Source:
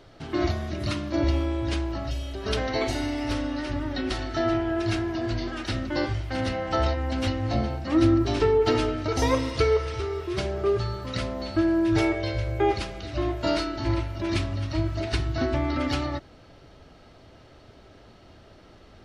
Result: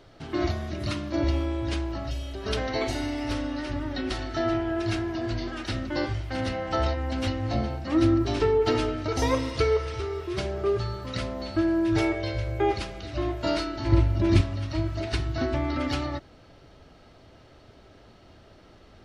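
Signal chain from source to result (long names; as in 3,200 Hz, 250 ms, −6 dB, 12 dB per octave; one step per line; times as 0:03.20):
0:13.92–0:14.41: low-shelf EQ 420 Hz +11 dB
level −1.5 dB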